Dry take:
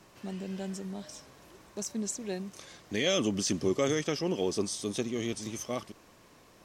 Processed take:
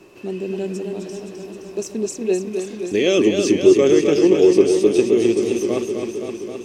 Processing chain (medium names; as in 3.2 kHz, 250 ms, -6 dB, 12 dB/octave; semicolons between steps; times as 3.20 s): small resonant body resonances 370/2600 Hz, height 16 dB, ringing for 25 ms; modulated delay 261 ms, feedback 73%, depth 71 cents, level -6 dB; trim +3 dB